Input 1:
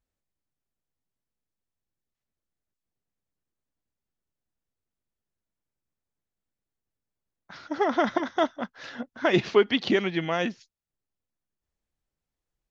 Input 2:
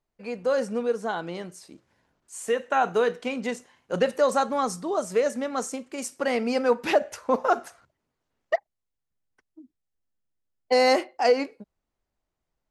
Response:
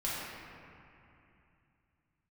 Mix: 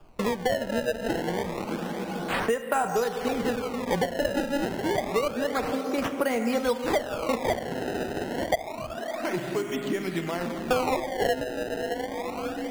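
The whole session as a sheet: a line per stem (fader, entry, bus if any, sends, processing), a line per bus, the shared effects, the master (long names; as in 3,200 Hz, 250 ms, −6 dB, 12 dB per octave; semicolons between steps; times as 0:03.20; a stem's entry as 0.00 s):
−15.0 dB, 0.00 s, send −13.5 dB, automatic ducking −11 dB, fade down 0.50 s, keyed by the second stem
−3.5 dB, 0.00 s, send −9 dB, reverb reduction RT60 0.56 s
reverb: on, RT60 2.7 s, pre-delay 3 ms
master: sample-and-hold swept by an LFO 22×, swing 160% 0.28 Hz; high-shelf EQ 3,500 Hz −7.5 dB; multiband upward and downward compressor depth 100%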